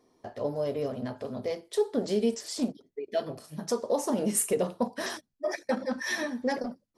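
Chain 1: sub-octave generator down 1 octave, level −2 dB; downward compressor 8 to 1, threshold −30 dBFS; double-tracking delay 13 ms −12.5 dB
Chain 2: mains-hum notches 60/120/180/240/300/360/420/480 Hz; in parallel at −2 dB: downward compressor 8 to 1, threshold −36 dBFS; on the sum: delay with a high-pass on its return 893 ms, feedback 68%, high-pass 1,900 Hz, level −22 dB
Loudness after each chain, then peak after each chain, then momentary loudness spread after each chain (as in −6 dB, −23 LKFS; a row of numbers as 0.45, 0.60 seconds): −35.5, −29.5 LKFS; −19.5, −11.5 dBFS; 5, 7 LU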